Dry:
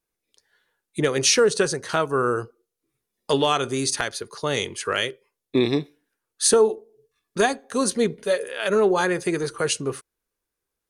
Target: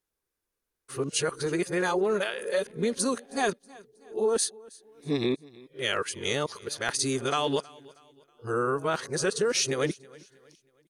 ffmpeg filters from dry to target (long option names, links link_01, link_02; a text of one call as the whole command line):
ffmpeg -i in.wav -af "areverse,acompressor=threshold=-20dB:ratio=6,aecho=1:1:319|638|957:0.0708|0.0283|0.0113,volume=-2.5dB" out.wav